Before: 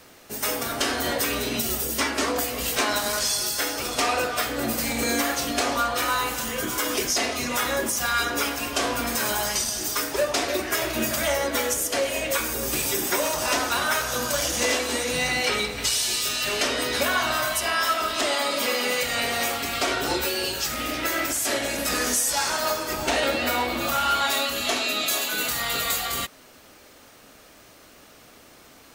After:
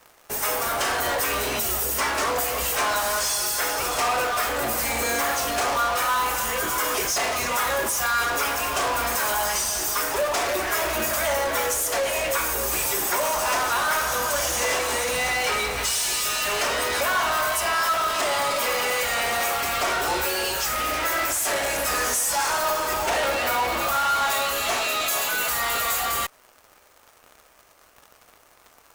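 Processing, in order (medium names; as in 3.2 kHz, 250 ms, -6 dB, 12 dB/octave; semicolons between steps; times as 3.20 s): graphic EQ 125/250/1000/4000 Hz -6/-11/+5/-6 dB; in parallel at -7 dB: fuzz box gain 39 dB, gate -44 dBFS; on the sum: trim -6.5 dB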